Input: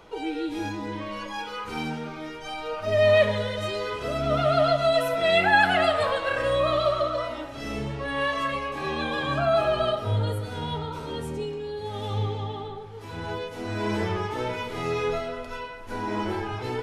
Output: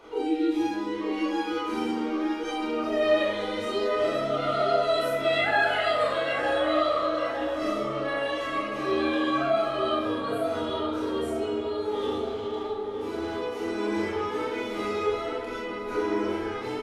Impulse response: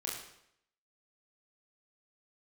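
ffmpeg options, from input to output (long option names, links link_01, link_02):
-filter_complex "[0:a]aphaser=in_gain=1:out_gain=1:delay=4.9:decay=0.23:speed=0.25:type=sinusoidal,asplit=2[link_01][link_02];[link_02]acompressor=threshold=-30dB:ratio=6,volume=2.5dB[link_03];[link_01][link_03]amix=inputs=2:normalize=0,lowshelf=frequency=210:width_type=q:width=3:gain=-6.5,asettb=1/sr,asplit=3[link_04][link_05][link_06];[link_04]atrim=end=12.204[link_07];[link_05]atrim=start=12.2:end=13.36,asetpts=PTS-STARTPTS,afade=type=in:duration=0.004:curve=qsin,afade=type=out:start_time=1.156:duration=0.004:curve=qsin,volume=23dB,asoftclip=hard,volume=-23dB[link_08];[link_06]atrim=start=13.356[link_09];[link_07][link_08]acrossfade=duration=0.004:curve1=hsin:curve2=qsin[link_10];[link_10][link_09]acrossfade=duration=0.004:curve1=qsin:curve2=hsin,asplit=2[link_11][link_12];[link_12]adelay=910,lowpass=frequency=1400:poles=1,volume=-4.5dB,asplit=2[link_13][link_14];[link_14]adelay=910,lowpass=frequency=1400:poles=1,volume=0.52,asplit=2[link_15][link_16];[link_16]adelay=910,lowpass=frequency=1400:poles=1,volume=0.52,asplit=2[link_17][link_18];[link_18]adelay=910,lowpass=frequency=1400:poles=1,volume=0.52,asplit=2[link_19][link_20];[link_20]adelay=910,lowpass=frequency=1400:poles=1,volume=0.52,asplit=2[link_21][link_22];[link_22]adelay=910,lowpass=frequency=1400:poles=1,volume=0.52,asplit=2[link_23][link_24];[link_24]adelay=910,lowpass=frequency=1400:poles=1,volume=0.52[link_25];[link_11][link_13][link_15][link_17][link_19][link_21][link_23][link_25]amix=inputs=8:normalize=0[link_26];[1:a]atrim=start_sample=2205,afade=type=out:start_time=0.18:duration=0.01,atrim=end_sample=8379[link_27];[link_26][link_27]afir=irnorm=-1:irlink=0,volume=-8dB"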